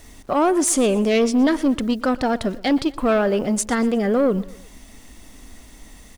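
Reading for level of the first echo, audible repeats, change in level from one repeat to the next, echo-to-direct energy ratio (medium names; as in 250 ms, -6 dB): -20.0 dB, 3, -6.5 dB, -19.0 dB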